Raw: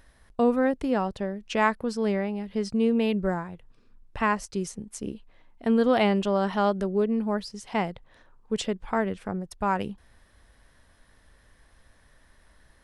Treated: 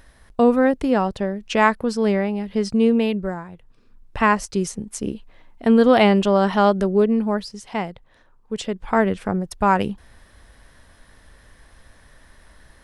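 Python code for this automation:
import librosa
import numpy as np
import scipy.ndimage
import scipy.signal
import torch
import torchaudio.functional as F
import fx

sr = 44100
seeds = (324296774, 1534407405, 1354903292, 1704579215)

y = fx.gain(x, sr, db=fx.line((2.91, 6.5), (3.35, -1.0), (4.26, 7.5), (7.05, 7.5), (7.89, 0.5), (8.59, 0.5), (9.01, 8.5)))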